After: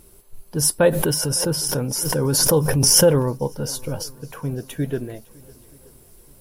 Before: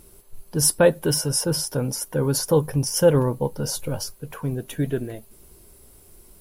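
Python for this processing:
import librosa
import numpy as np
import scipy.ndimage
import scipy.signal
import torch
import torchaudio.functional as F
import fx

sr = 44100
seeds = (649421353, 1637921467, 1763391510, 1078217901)

y = fx.echo_swing(x, sr, ms=927, ratio=1.5, feedback_pct=39, wet_db=-24.0)
y = fx.pre_swell(y, sr, db_per_s=22.0, at=(0.89, 3.15), fade=0.02)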